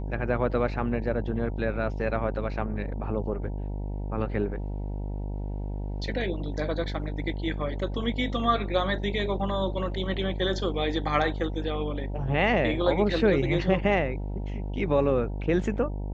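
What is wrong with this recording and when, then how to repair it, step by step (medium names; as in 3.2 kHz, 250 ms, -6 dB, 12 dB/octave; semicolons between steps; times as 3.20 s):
buzz 50 Hz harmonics 19 -32 dBFS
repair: de-hum 50 Hz, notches 19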